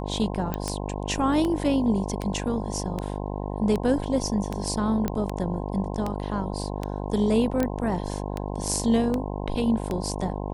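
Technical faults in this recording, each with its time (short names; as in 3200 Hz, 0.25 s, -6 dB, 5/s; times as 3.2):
buzz 50 Hz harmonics 21 -31 dBFS
tick 78 rpm -15 dBFS
0.54 pop -14 dBFS
5.08 pop -13 dBFS
7.63 pop -13 dBFS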